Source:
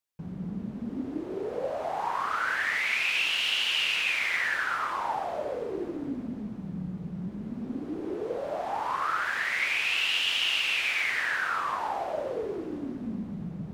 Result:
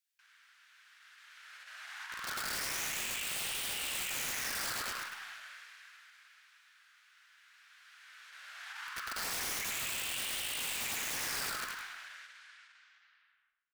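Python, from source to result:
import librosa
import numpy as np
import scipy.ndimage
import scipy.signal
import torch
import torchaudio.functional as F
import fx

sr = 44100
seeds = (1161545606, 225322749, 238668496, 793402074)

p1 = fx.tape_stop_end(x, sr, length_s=2.22)
p2 = fx.over_compress(p1, sr, threshold_db=-31.0, ratio=-0.5)
p3 = scipy.signal.sosfilt(scipy.signal.ellip(4, 1.0, 80, 1500.0, 'highpass', fs=sr, output='sos'), p2)
p4 = (np.mod(10.0 ** (33.0 / 20.0) * p3 + 1.0, 2.0) - 1.0) / 10.0 ** (33.0 / 20.0)
p5 = p4 + fx.echo_single(p4, sr, ms=103, db=-7.5, dry=0)
y = fx.rev_schroeder(p5, sr, rt60_s=1.2, comb_ms=28, drr_db=11.5)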